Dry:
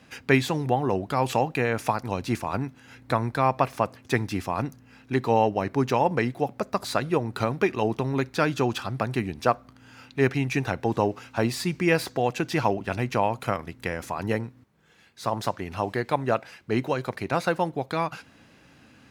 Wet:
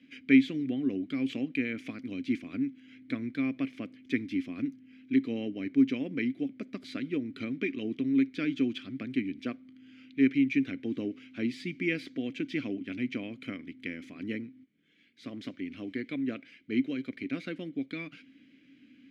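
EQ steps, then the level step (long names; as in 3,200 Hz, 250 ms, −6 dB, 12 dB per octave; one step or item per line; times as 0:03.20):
formant filter i
+5.5 dB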